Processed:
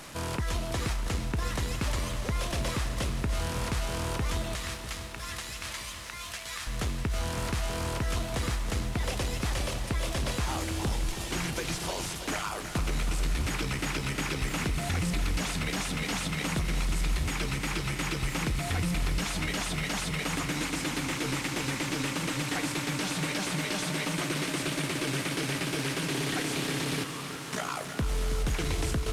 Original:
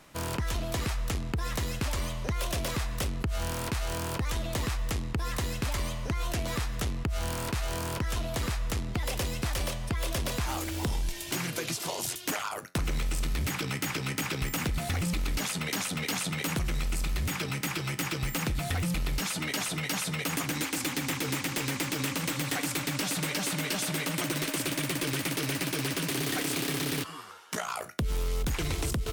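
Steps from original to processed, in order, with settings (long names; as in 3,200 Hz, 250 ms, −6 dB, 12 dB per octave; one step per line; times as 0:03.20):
linear delta modulator 64 kbit/s, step −39 dBFS
0:04.55–0:06.67: high-pass filter 1,400 Hz 12 dB per octave
feedback echo at a low word length 323 ms, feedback 80%, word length 10 bits, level −10.5 dB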